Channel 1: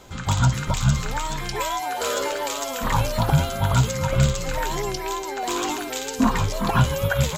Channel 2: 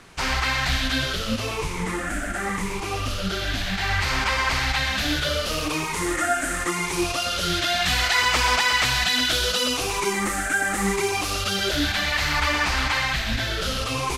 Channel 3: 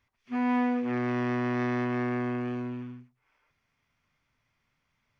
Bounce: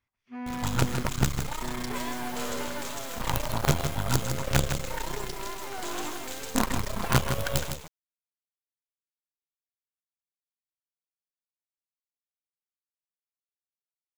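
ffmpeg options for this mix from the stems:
-filter_complex "[0:a]acrusher=bits=3:dc=4:mix=0:aa=0.000001,adelay=350,volume=0.531,asplit=2[s0][s1];[s1]volume=0.422[s2];[2:a]volume=0.355,asplit=3[s3][s4][s5];[s3]atrim=end=1.03,asetpts=PTS-STARTPTS,afade=t=out:st=1.026:d=0.004:c=hsin[s6];[s4]atrim=start=1.03:end=1.62,asetpts=PTS-STARTPTS,volume=0[s7];[s5]atrim=start=1.62,asetpts=PTS-STARTPTS,afade=t=in:d=0.004:c=hsin[s8];[s6][s7][s8]concat=n=3:v=0:a=1,asplit=2[s9][s10];[s10]volume=0.376[s11];[s2][s11]amix=inputs=2:normalize=0,aecho=0:1:159:1[s12];[s0][s9][s12]amix=inputs=3:normalize=0"

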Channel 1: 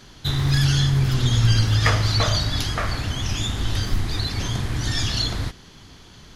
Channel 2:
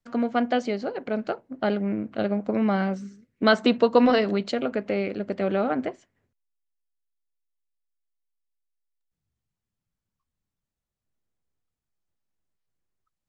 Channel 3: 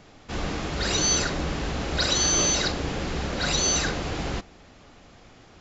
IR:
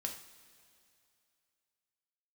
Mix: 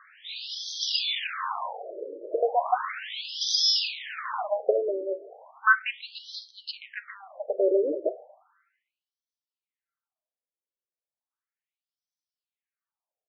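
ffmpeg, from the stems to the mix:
-filter_complex "[0:a]acrossover=split=770|2600[s0][s1][s2];[s0]acompressor=threshold=0.0562:ratio=4[s3];[s1]acompressor=threshold=0.00708:ratio=4[s4];[s2]acompressor=threshold=0.02:ratio=4[s5];[s3][s4][s5]amix=inputs=3:normalize=0,alimiter=limit=0.0708:level=0:latency=1,volume=0.75[s6];[1:a]equalizer=f=3700:w=1:g=-11,aphaser=in_gain=1:out_gain=1:delay=3.4:decay=0.22:speed=0.42:type=sinusoidal,adelay=2200,volume=1.26,asplit=2[s7][s8];[s8]volume=0.501[s9];[2:a]aeval=exprs='val(0)*sin(2*PI*1000*n/s)':c=same,volume=0.794,asplit=2[s10][s11];[s11]volume=0.473[s12];[3:a]atrim=start_sample=2205[s13];[s9][s12]amix=inputs=2:normalize=0[s14];[s14][s13]afir=irnorm=-1:irlink=0[s15];[s6][s7][s10][s15]amix=inputs=4:normalize=0,highshelf=f=3900:g=9,afftfilt=real='re*between(b*sr/1024,420*pow(4500/420,0.5+0.5*sin(2*PI*0.35*pts/sr))/1.41,420*pow(4500/420,0.5+0.5*sin(2*PI*0.35*pts/sr))*1.41)':imag='im*between(b*sr/1024,420*pow(4500/420,0.5+0.5*sin(2*PI*0.35*pts/sr))/1.41,420*pow(4500/420,0.5+0.5*sin(2*PI*0.35*pts/sr))*1.41)':win_size=1024:overlap=0.75"

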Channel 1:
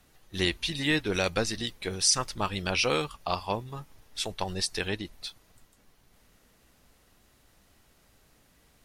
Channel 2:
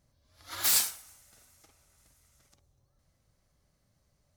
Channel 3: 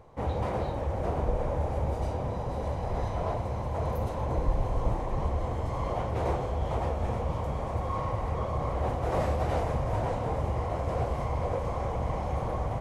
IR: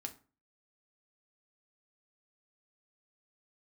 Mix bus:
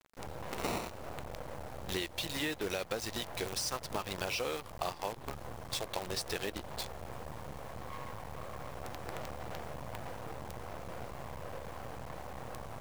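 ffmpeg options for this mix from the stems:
-filter_complex "[0:a]deesser=0.45,equalizer=f=500:w=0.81:g=5.5,adelay=1550,volume=0.944[s0];[1:a]highpass=f=78:p=1,acrusher=samples=27:mix=1:aa=0.000001,volume=1.19[s1];[2:a]asoftclip=type=tanh:threshold=0.0398,highpass=42,adynamicequalizer=threshold=0.00251:dfrequency=140:dqfactor=2:tfrequency=140:tqfactor=2:attack=5:release=100:ratio=0.375:range=2:mode=boostabove:tftype=bell,volume=0.631[s2];[s0][s1][s2]amix=inputs=3:normalize=0,lowshelf=f=280:g=-6.5,acrusher=bits=6:dc=4:mix=0:aa=0.000001,acompressor=threshold=0.0224:ratio=6"

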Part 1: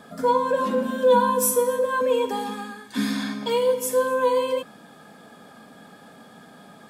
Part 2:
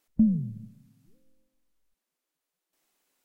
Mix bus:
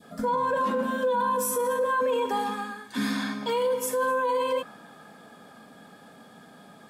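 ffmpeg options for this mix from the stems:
-filter_complex "[0:a]adynamicequalizer=threshold=0.0158:dfrequency=1200:dqfactor=0.79:tfrequency=1200:tqfactor=0.79:attack=5:release=100:ratio=0.375:range=3.5:mode=boostabove:tftype=bell,volume=0.708[s0];[1:a]volume=0.211[s1];[s0][s1]amix=inputs=2:normalize=0,alimiter=limit=0.112:level=0:latency=1:release=11"

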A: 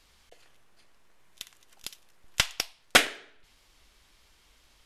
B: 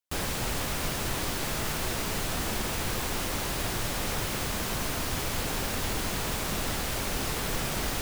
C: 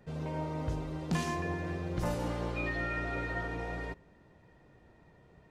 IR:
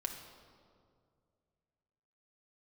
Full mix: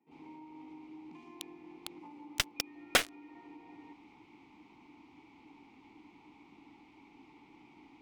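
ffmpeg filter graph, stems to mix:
-filter_complex "[0:a]acrusher=bits=3:mix=0:aa=0.5,volume=0.668[s0];[1:a]lowpass=6300,volume=0.237[s1];[2:a]highpass=260,volume=0.944[s2];[s1][s2]amix=inputs=2:normalize=0,asplit=3[s3][s4][s5];[s3]bandpass=f=300:t=q:w=8,volume=1[s6];[s4]bandpass=f=870:t=q:w=8,volume=0.501[s7];[s5]bandpass=f=2240:t=q:w=8,volume=0.355[s8];[s6][s7][s8]amix=inputs=3:normalize=0,alimiter=level_in=8.41:limit=0.0631:level=0:latency=1:release=285,volume=0.119,volume=1[s9];[s0][s9]amix=inputs=2:normalize=0,alimiter=limit=0.266:level=0:latency=1:release=468"

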